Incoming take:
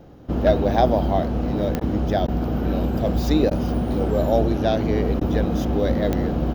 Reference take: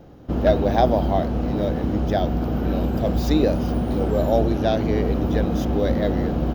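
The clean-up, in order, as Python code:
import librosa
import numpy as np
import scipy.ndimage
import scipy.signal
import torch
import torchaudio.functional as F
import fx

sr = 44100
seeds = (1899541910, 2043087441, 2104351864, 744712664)

y = fx.fix_declick_ar(x, sr, threshold=10.0)
y = fx.fix_interpolate(y, sr, at_s=(1.8, 2.27, 3.5, 5.2), length_ms=10.0)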